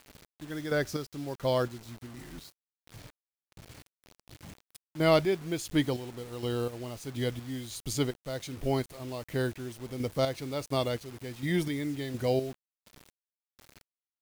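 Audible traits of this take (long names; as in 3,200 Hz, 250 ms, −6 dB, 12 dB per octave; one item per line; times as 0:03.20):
chopped level 1.4 Hz, depth 60%, duty 35%
a quantiser's noise floor 8 bits, dither none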